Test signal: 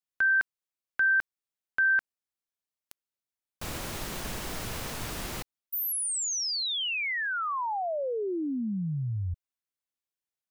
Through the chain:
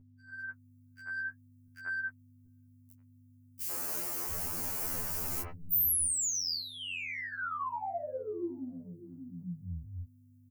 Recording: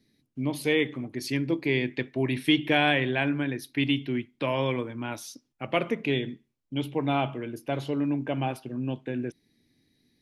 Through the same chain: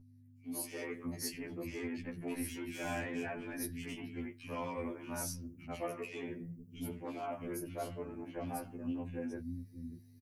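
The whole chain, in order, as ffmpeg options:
-filter_complex "[0:a]asoftclip=type=tanh:threshold=-19dB,alimiter=level_in=3dB:limit=-24dB:level=0:latency=1:release=223,volume=-3dB,crystalizer=i=0.5:c=0,tremolo=f=42:d=0.857,equalizer=f=3.6k:w=3.8:g=-15,flanger=delay=3:depth=7.9:regen=-49:speed=0.56:shape=sinusoidal,acompressor=threshold=-41dB:ratio=6:attack=33:release=25:knee=1:detection=rms,acrossover=split=220|2300[a][b][c];[b]adelay=90[d];[a]adelay=680[e];[e][d][c]amix=inputs=3:normalize=0,dynaudnorm=f=190:g=5:m=14dB,aeval=exprs='val(0)+0.00708*(sin(2*PI*50*n/s)+sin(2*PI*2*50*n/s)/2+sin(2*PI*3*50*n/s)/3+sin(2*PI*4*50*n/s)/4+sin(2*PI*5*50*n/s)/5)':c=same,highshelf=f=10k:g=10.5,afftfilt=real='re*2*eq(mod(b,4),0)':imag='im*2*eq(mod(b,4),0)':win_size=2048:overlap=0.75,volume=-7dB"

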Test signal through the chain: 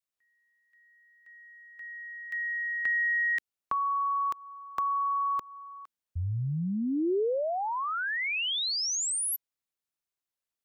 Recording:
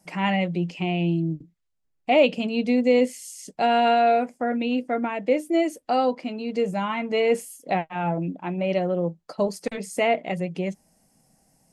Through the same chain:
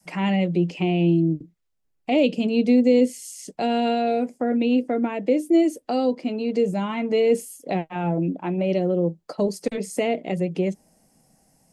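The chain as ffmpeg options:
-filter_complex "[0:a]adynamicequalizer=threshold=0.0178:dfrequency=400:dqfactor=0.92:tfrequency=400:tqfactor=0.92:attack=5:release=100:ratio=0.375:range=3.5:mode=boostabove:tftype=bell,acrossover=split=400|3000[a][b][c];[b]acompressor=threshold=-31dB:ratio=4[d];[a][d][c]amix=inputs=3:normalize=0,volume=1.5dB"

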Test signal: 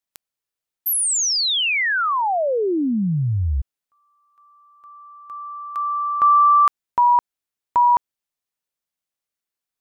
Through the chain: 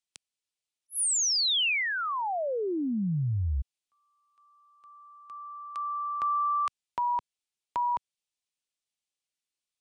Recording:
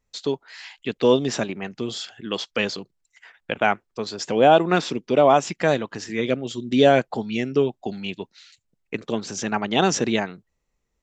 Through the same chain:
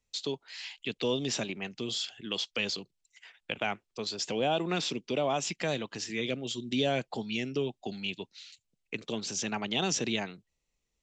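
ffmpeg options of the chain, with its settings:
-filter_complex "[0:a]highshelf=f=2.1k:t=q:w=1.5:g=6.5,acrossover=split=160[a][b];[b]acompressor=threshold=-22dB:ratio=2:attack=2.9:release=104:knee=2.83:detection=peak[c];[a][c]amix=inputs=2:normalize=0,aresample=22050,aresample=44100,volume=-7.5dB"

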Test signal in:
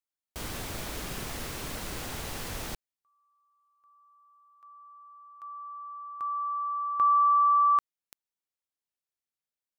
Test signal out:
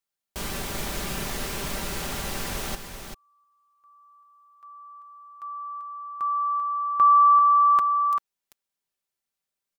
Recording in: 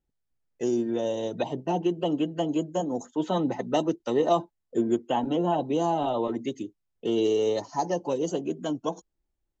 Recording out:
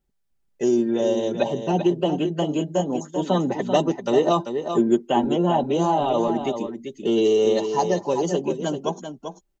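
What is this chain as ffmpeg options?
-af "aecho=1:1:5.1:0.43,aecho=1:1:390:0.398,volume=4.5dB"

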